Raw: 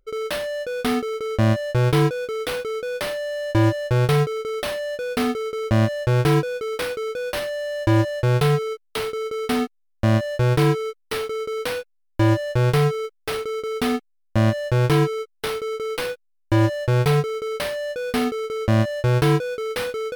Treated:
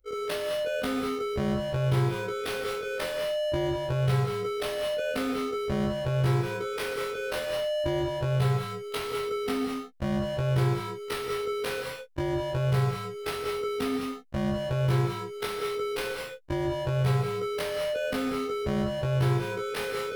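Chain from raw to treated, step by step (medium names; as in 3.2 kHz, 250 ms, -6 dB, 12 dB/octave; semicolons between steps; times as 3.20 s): short-time spectra conjugated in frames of 47 ms; compression 3:1, threshold -30 dBFS, peak gain reduction 9.5 dB; gated-style reverb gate 240 ms rising, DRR 2.5 dB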